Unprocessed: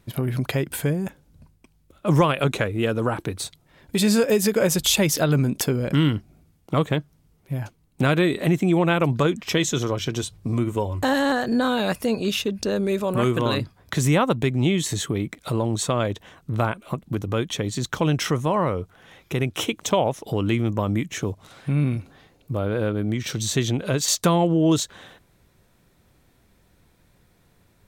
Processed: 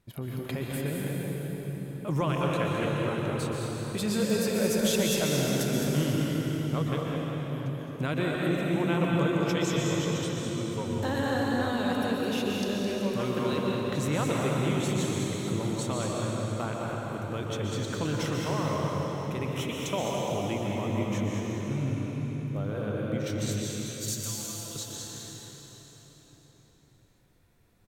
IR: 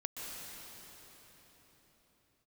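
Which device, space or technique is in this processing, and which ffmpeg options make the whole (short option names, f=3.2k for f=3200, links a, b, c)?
cave: -filter_complex "[0:a]asettb=1/sr,asplit=3[a][b][c];[a]atrim=end=23.514[d];[b]atrim=start=23.51:end=24.76,asetpts=PTS-STARTPTS,afade=t=in:d=0.004:c=qsin,afade=t=out:st=1.246:d=0.004:c=qsin,aderivative[e];[c]atrim=start=24.756[f];[d][e]acrossfade=d=0.004:c1=hsin:c2=qsin[g];[g][f]acrossfade=d=0.004:c1=qsin:c2=hsin,aecho=1:1:212:0.398[h];[1:a]atrim=start_sample=2205[i];[h][i]afir=irnorm=-1:irlink=0,volume=-8dB"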